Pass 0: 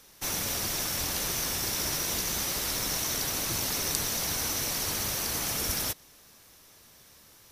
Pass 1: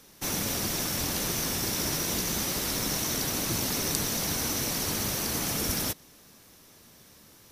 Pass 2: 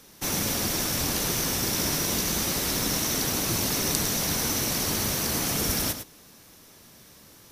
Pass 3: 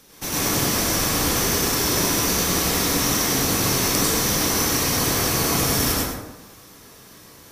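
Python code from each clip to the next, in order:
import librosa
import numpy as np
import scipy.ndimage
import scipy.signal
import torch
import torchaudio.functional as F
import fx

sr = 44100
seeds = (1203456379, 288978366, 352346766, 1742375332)

y1 = fx.peak_eq(x, sr, hz=220.0, db=7.5, octaves=2.0)
y2 = y1 + 10.0 ** (-9.5 / 20.0) * np.pad(y1, (int(105 * sr / 1000.0), 0))[:len(y1)]
y2 = y2 * librosa.db_to_amplitude(2.5)
y3 = fx.rev_plate(y2, sr, seeds[0], rt60_s=1.0, hf_ratio=0.45, predelay_ms=85, drr_db=-6.5)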